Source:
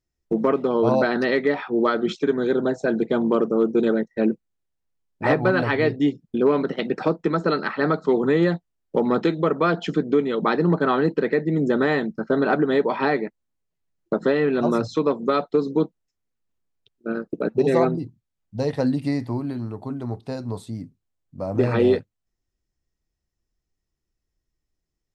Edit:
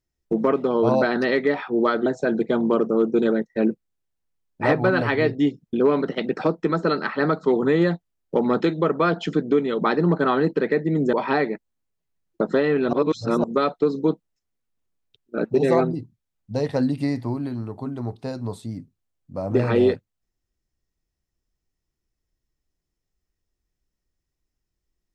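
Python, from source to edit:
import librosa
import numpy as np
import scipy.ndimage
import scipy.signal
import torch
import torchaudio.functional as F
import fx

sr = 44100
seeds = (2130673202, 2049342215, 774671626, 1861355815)

y = fx.edit(x, sr, fx.cut(start_s=2.06, length_s=0.61),
    fx.cut(start_s=11.74, length_s=1.11),
    fx.reverse_span(start_s=14.65, length_s=0.51),
    fx.cut(start_s=17.1, length_s=0.32), tone=tone)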